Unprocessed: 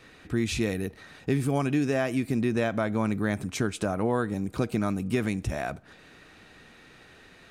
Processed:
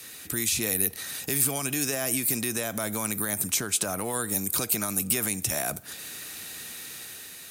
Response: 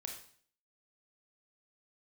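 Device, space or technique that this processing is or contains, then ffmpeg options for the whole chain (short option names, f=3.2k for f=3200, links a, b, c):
FM broadcast chain: -filter_complex "[0:a]highpass=58,dynaudnorm=f=280:g=5:m=4dB,acrossover=split=86|560|1400|5400[a][b][c][d][e];[a]acompressor=threshold=-51dB:ratio=4[f];[b]acompressor=threshold=-31dB:ratio=4[g];[c]acompressor=threshold=-31dB:ratio=4[h];[d]acompressor=threshold=-40dB:ratio=4[i];[e]acompressor=threshold=-52dB:ratio=4[j];[f][g][h][i][j]amix=inputs=5:normalize=0,aemphasis=mode=production:type=75fm,alimiter=limit=-21.5dB:level=0:latency=1:release=48,asoftclip=type=hard:threshold=-22.5dB,lowpass=f=15k:w=0.5412,lowpass=f=15k:w=1.3066,aemphasis=mode=production:type=75fm"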